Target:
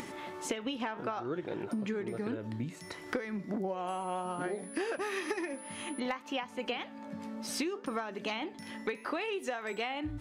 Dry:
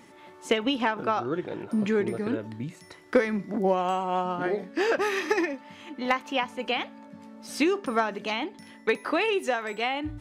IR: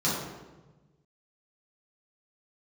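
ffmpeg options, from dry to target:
-filter_complex "[0:a]flanger=delay=2.5:depth=6.9:regen=87:speed=0.62:shape=sinusoidal,acompressor=mode=upward:threshold=-39dB:ratio=2.5,asettb=1/sr,asplit=3[link_01][link_02][link_03];[link_01]atrim=end=3.874[link_04];[link_02]atrim=start=3.87:end=6,asetpts=PTS-STARTPTS,afade=type=in:duration=0.004:curve=qsin,afade=type=out:start_time=2.126:duration=0.004:curve=qsin,aeval=exprs='val(0)+0.00282*sin(2*PI*10000*n/s)':channel_layout=same[link_05];[link_03]atrim=start=5.996[link_06];[link_04][link_05]acrossfade=duration=0.004:curve1=hsin:curve2=qsin[link_07];[link_07][link_06]acrossfade=duration=0.004:curve1=qsin:curve2=hsin,acompressor=threshold=-36dB:ratio=12,volume=4.5dB"

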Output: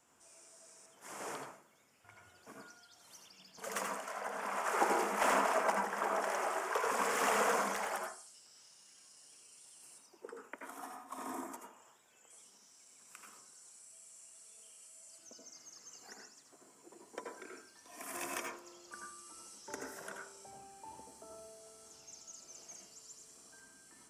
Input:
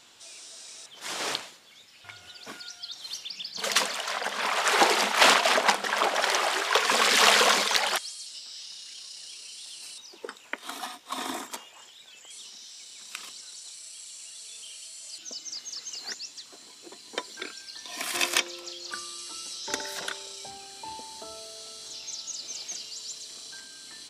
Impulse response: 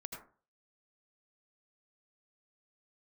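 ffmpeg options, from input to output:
-filter_complex "[0:a]acrossover=split=260|1300|5900[link_01][link_02][link_03][link_04];[link_03]lowpass=1700[link_05];[link_04]asoftclip=type=tanh:threshold=-22.5dB[link_06];[link_01][link_02][link_05][link_06]amix=inputs=4:normalize=0[link_07];[1:a]atrim=start_sample=2205[link_08];[link_07][link_08]afir=irnorm=-1:irlink=0,volume=-5dB"

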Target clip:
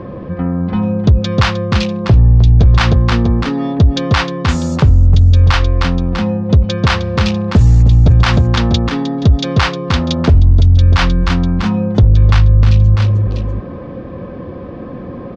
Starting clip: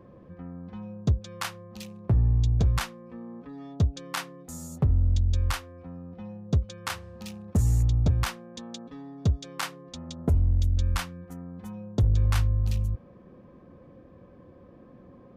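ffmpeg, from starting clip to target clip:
ffmpeg -i in.wav -filter_complex "[0:a]lowpass=frequency=5000:width=0.5412,lowpass=frequency=5000:width=1.3066,asplit=2[link_01][link_02];[link_02]aecho=0:1:309|646:0.282|0.168[link_03];[link_01][link_03]amix=inputs=2:normalize=0,alimiter=level_in=24.5dB:limit=-1dB:release=50:level=0:latency=1,volume=-1dB" out.wav

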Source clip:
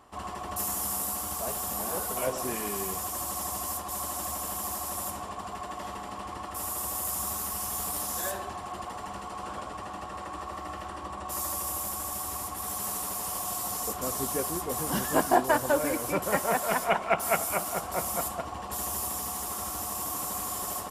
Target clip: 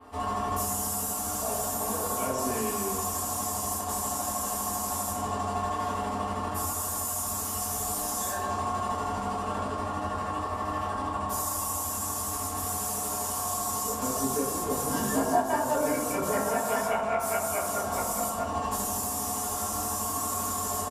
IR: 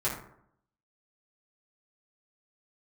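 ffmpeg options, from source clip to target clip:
-filter_complex "[0:a]adynamicequalizer=threshold=0.00316:dfrequency=7000:dqfactor=1.4:tfrequency=7000:tqfactor=1.4:attack=5:release=100:ratio=0.375:range=3.5:mode=boostabove:tftype=bell,areverse,acompressor=mode=upward:threshold=-40dB:ratio=2.5,areverse,aecho=1:1:4.4:0.34,acompressor=threshold=-34dB:ratio=3[link_01];[1:a]atrim=start_sample=2205,asetrate=30429,aresample=44100[link_02];[link_01][link_02]afir=irnorm=-1:irlink=0,volume=-3.5dB"

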